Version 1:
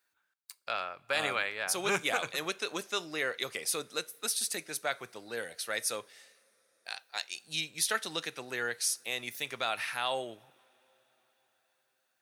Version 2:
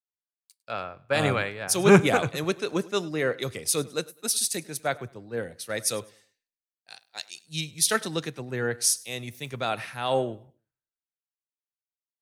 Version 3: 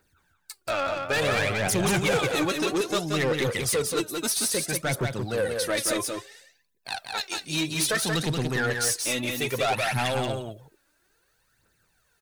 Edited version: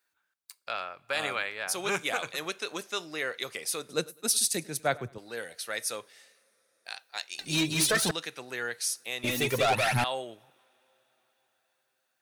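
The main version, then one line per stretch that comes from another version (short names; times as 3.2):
1
3.89–5.18 from 2
7.39–8.11 from 3
9.24–10.04 from 3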